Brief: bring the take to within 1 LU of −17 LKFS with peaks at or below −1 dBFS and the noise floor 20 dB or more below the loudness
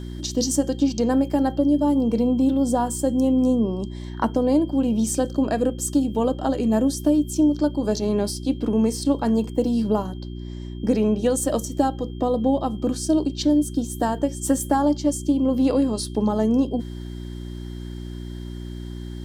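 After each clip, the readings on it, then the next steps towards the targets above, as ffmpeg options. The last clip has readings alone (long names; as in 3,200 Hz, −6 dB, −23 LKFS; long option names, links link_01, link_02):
mains hum 60 Hz; hum harmonics up to 360 Hz; level of the hum −31 dBFS; interfering tone 3,200 Hz; level of the tone −51 dBFS; integrated loudness −22.0 LKFS; sample peak −7.0 dBFS; target loudness −17.0 LKFS
→ -af "bandreject=frequency=60:width_type=h:width=4,bandreject=frequency=120:width_type=h:width=4,bandreject=frequency=180:width_type=h:width=4,bandreject=frequency=240:width_type=h:width=4,bandreject=frequency=300:width_type=h:width=4,bandreject=frequency=360:width_type=h:width=4"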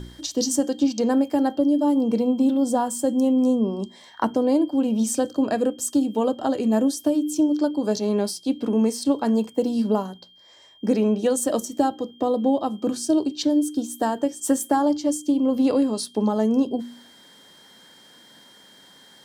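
mains hum none found; interfering tone 3,200 Hz; level of the tone −51 dBFS
→ -af "bandreject=frequency=3200:width=30"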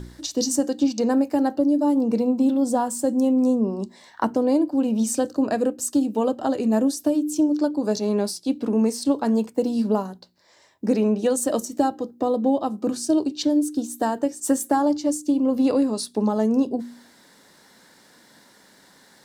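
interfering tone none found; integrated loudness −22.5 LKFS; sample peak −7.0 dBFS; target loudness −17.0 LKFS
→ -af "volume=5.5dB"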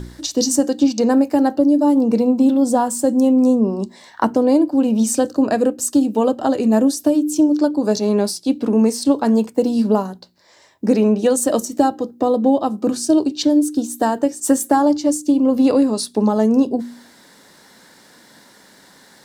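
integrated loudness −17.0 LKFS; sample peak −1.5 dBFS; background noise floor −49 dBFS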